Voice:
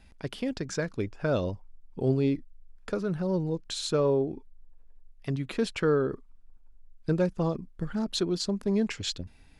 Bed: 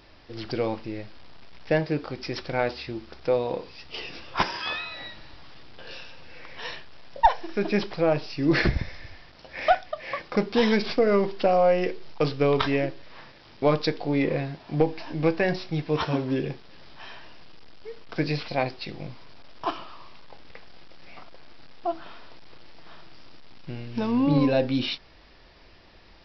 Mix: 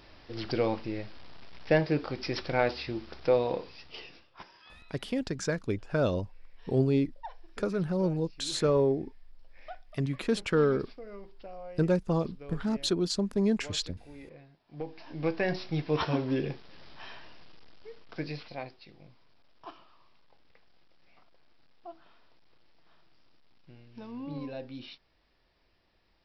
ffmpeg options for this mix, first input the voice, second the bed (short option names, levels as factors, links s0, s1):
-filter_complex "[0:a]adelay=4700,volume=1[s0];[1:a]volume=10.6,afade=t=out:st=3.43:d=0.87:silence=0.0668344,afade=t=in:st=14.67:d=1.04:silence=0.0841395,afade=t=out:st=17:d=1.83:silence=0.188365[s1];[s0][s1]amix=inputs=2:normalize=0"